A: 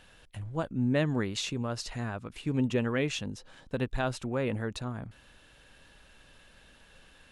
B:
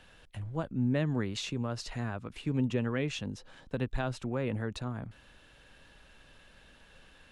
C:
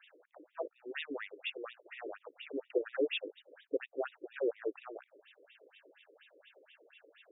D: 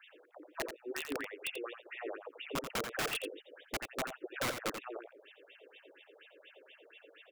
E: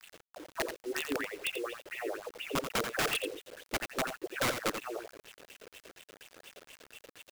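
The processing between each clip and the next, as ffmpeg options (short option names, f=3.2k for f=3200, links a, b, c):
-filter_complex "[0:a]highshelf=f=7.1k:g=-6.5,acrossover=split=220[a][b];[b]acompressor=threshold=-37dB:ratio=1.5[c];[a][c]amix=inputs=2:normalize=0"
-filter_complex "[0:a]acrossover=split=720|1900[a][b][c];[b]acrusher=samples=42:mix=1:aa=0.000001[d];[a][d][c]amix=inputs=3:normalize=0,afftfilt=real='re*between(b*sr/1024,390*pow(2700/390,0.5+0.5*sin(2*PI*4.2*pts/sr))/1.41,390*pow(2700/390,0.5+0.5*sin(2*PI*4.2*pts/sr))*1.41)':imag='im*between(b*sr/1024,390*pow(2700/390,0.5+0.5*sin(2*PI*4.2*pts/sr))/1.41,390*pow(2700/390,0.5+0.5*sin(2*PI*4.2*pts/sr))*1.41)':win_size=1024:overlap=0.75,volume=6.5dB"
-filter_complex "[0:a]acrossover=split=360[a][b];[b]acompressor=threshold=-44dB:ratio=1.5[c];[a][c]amix=inputs=2:normalize=0,aeval=exprs='(mod(39.8*val(0)+1,2)-1)/39.8':c=same,aecho=1:1:86:0.398,volume=3dB"
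-af "acrusher=bits=8:mix=0:aa=0.000001,volume=4.5dB"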